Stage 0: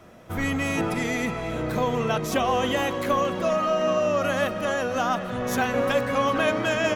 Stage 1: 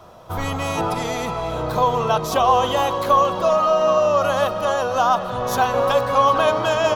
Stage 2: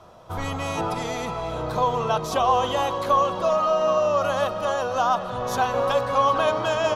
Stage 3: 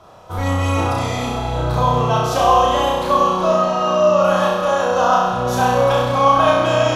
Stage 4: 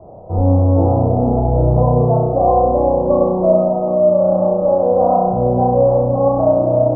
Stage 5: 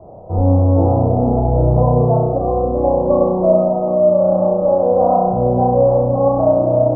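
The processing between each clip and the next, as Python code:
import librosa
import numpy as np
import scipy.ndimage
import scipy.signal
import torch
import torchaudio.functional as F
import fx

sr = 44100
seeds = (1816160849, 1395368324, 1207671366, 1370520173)

y1 = fx.graphic_eq(x, sr, hz=(250, 1000, 2000, 4000, 8000), db=(-10, 9, -12, 5, -4))
y1 = F.gain(torch.from_numpy(y1), 5.0).numpy()
y2 = scipy.signal.sosfilt(scipy.signal.butter(2, 11000.0, 'lowpass', fs=sr, output='sos'), y1)
y2 = F.gain(torch.from_numpy(y2), -4.0).numpy()
y3 = fx.room_flutter(y2, sr, wall_m=5.6, rt60_s=1.1)
y3 = F.gain(torch.from_numpy(y3), 2.0).numpy()
y4 = scipy.signal.sosfilt(scipy.signal.butter(6, 740.0, 'lowpass', fs=sr, output='sos'), y3)
y4 = fx.rider(y4, sr, range_db=4, speed_s=0.5)
y4 = F.gain(torch.from_numpy(y4), 5.0).numpy()
y5 = fx.spec_box(y4, sr, start_s=2.37, length_s=0.47, low_hz=500.0, high_hz=1100.0, gain_db=-8)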